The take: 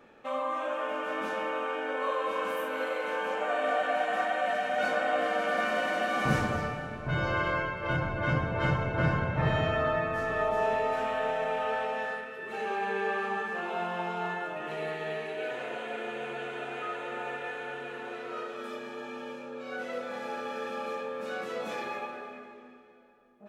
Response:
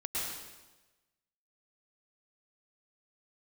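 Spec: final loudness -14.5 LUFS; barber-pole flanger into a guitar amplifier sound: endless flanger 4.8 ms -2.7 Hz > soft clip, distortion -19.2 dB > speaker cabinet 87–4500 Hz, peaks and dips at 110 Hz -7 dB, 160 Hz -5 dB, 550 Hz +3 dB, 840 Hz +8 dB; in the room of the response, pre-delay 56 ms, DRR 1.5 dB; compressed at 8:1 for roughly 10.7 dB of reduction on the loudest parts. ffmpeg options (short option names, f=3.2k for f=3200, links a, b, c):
-filter_complex "[0:a]acompressor=threshold=-33dB:ratio=8,asplit=2[a][b];[1:a]atrim=start_sample=2205,adelay=56[c];[b][c]afir=irnorm=-1:irlink=0,volume=-6dB[d];[a][d]amix=inputs=2:normalize=0,asplit=2[e][f];[f]adelay=4.8,afreqshift=-2.7[g];[e][g]amix=inputs=2:normalize=1,asoftclip=threshold=-30.5dB,highpass=87,equalizer=f=110:t=q:w=4:g=-7,equalizer=f=160:t=q:w=4:g=-5,equalizer=f=550:t=q:w=4:g=3,equalizer=f=840:t=q:w=4:g=8,lowpass=f=4.5k:w=0.5412,lowpass=f=4.5k:w=1.3066,volume=22.5dB"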